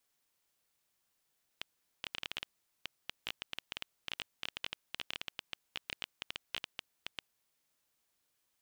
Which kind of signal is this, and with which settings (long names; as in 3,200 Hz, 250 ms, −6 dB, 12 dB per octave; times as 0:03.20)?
Geiger counter clicks 11 per second −20 dBFS 5.74 s